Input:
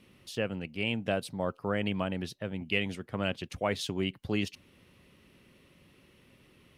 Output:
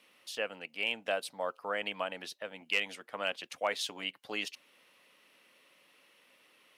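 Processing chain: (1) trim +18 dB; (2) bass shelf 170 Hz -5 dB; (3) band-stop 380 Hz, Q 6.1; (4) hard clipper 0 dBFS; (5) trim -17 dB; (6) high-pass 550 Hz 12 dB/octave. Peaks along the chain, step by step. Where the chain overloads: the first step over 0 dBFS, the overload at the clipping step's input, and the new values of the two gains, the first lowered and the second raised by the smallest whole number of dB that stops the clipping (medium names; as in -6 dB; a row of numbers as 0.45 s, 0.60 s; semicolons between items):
+5.5 dBFS, +5.5 dBFS, +5.0 dBFS, 0.0 dBFS, -17.0 dBFS, -15.5 dBFS; step 1, 5.0 dB; step 1 +13 dB, step 5 -12 dB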